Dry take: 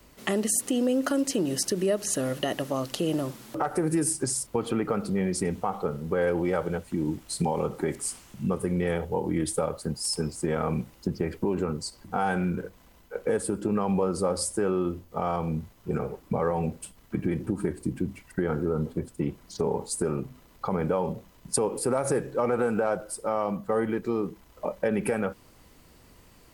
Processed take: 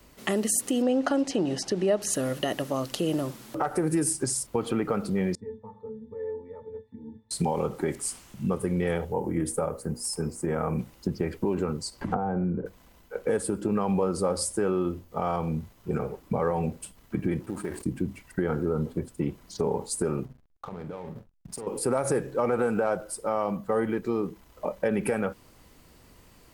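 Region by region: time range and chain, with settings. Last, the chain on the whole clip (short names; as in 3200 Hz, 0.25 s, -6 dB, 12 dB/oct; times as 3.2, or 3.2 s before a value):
0.82–2.02 LPF 5200 Hz + bell 780 Hz +10 dB 0.36 oct
5.35–7.31 air absorption 59 m + octave resonator A, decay 0.21 s
9.12–10.79 bell 3700 Hz -12 dB 1 oct + notches 60/120/180/240/300/360/420/480/540 Hz
12.01–12.66 treble ducked by the level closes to 690 Hz, closed at -27.5 dBFS + three-band squash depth 100%
17.4–17.86 G.711 law mismatch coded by A + low shelf 360 Hz -9.5 dB + sustainer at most 86 dB/s
20.25–21.67 compressor, threshold -34 dBFS + backlash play -40.5 dBFS + doubler 45 ms -11 dB
whole clip: dry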